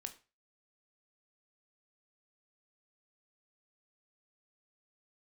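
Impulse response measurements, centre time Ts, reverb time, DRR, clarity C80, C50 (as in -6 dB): 7 ms, 0.30 s, 7.0 dB, 19.5 dB, 14.5 dB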